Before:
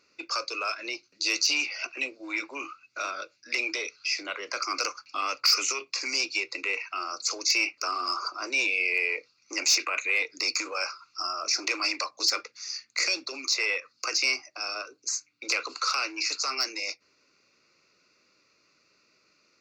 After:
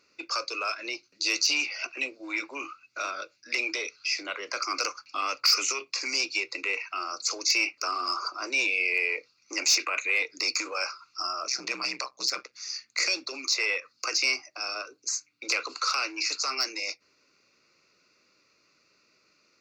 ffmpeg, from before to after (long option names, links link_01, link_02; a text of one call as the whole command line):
ffmpeg -i in.wav -filter_complex "[0:a]asplit=3[link_01][link_02][link_03];[link_01]afade=type=out:start_time=11.47:duration=0.02[link_04];[link_02]tremolo=f=130:d=0.75,afade=type=in:start_time=11.47:duration=0.02,afade=type=out:start_time=12.52:duration=0.02[link_05];[link_03]afade=type=in:start_time=12.52:duration=0.02[link_06];[link_04][link_05][link_06]amix=inputs=3:normalize=0" out.wav